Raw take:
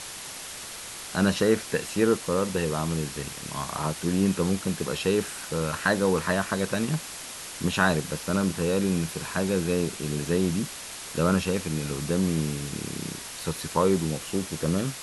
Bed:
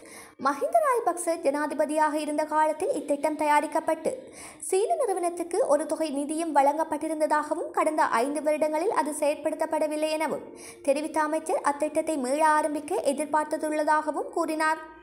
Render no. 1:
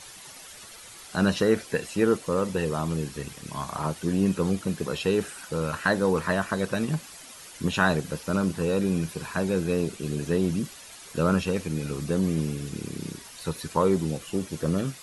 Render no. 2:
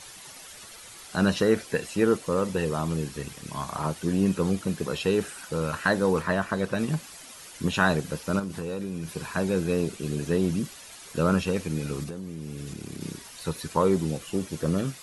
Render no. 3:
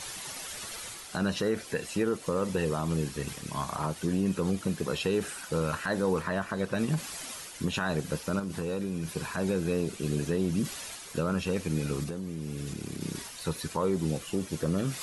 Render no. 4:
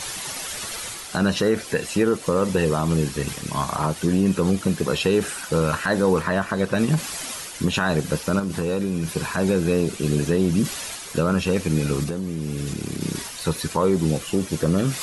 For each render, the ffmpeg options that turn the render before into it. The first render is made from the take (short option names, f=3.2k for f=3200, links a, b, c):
-af "afftdn=nr=10:nf=-39"
-filter_complex "[0:a]asettb=1/sr,asplit=3[a][b][c];[a]atrim=end=6.224[d];[b]atrim=start=6.22:end=6.79,asetpts=PTS-STARTPTS,afade=t=in:d=0.004:c=qsin,afade=t=out:st=0.566:d=0.004:c=qsin,highshelf=f=4.5k:g=-6.5[e];[c]atrim=start=6.786[f];[d][e]acrossfade=d=0.004:c1=hsin:c2=qsin[g];[g][f]acrossfade=d=0.004:c1=qsin:c2=hsin,asettb=1/sr,asplit=3[h][i][j];[h]atrim=end=8.394[k];[i]atrim=start=8.39:end=9.11,asetpts=PTS-STARTPTS,afade=t=in:d=0.004:c=qsin,afade=t=out:st=0.716:d=0.004:c=qsin,acompressor=threshold=-28dB:ratio=6:attack=3.2:release=140:knee=1:detection=peak[l];[j]atrim=start=9.106[m];[k][l]acrossfade=d=0.004:c1=hsin:c2=qsin[n];[n][m]acrossfade=d=0.004:c1=qsin:c2=hsin,asettb=1/sr,asplit=3[o][p][q];[o]atrim=end=12.034[r];[p]atrim=start=12.03:end=13.01,asetpts=PTS-STARTPTS,afade=t=in:d=0.004:c=qsin,afade=t=out:st=0.976:d=0.004:c=qsin,acompressor=threshold=-31dB:ratio=16:attack=3.2:release=140:knee=1:detection=peak[s];[q]atrim=start=13.006[t];[r][s]acrossfade=d=0.004:c1=hsin:c2=qsin[u];[u][t]acrossfade=d=0.004:c1=qsin:c2=hsin"
-af "alimiter=limit=-18dB:level=0:latency=1:release=143,areverse,acompressor=mode=upward:threshold=-32dB:ratio=2.5,areverse"
-af "volume=8.5dB"